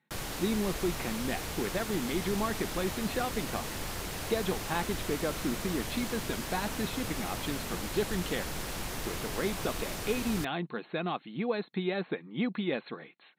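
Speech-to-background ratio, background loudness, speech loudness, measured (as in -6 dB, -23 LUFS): 2.5 dB, -37.0 LUFS, -34.5 LUFS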